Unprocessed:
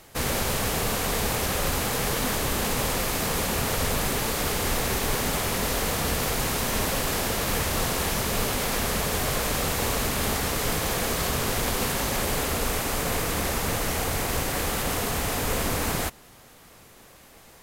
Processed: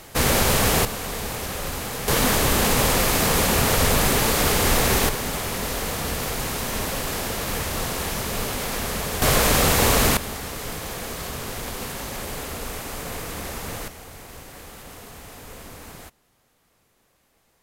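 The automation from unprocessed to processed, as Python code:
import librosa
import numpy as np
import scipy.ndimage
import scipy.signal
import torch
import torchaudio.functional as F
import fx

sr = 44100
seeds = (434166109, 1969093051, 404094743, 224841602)

y = fx.gain(x, sr, db=fx.steps((0.0, 7.0), (0.85, -3.5), (2.08, 6.5), (5.09, -1.0), (9.22, 8.0), (10.17, -5.5), (13.88, -14.5)))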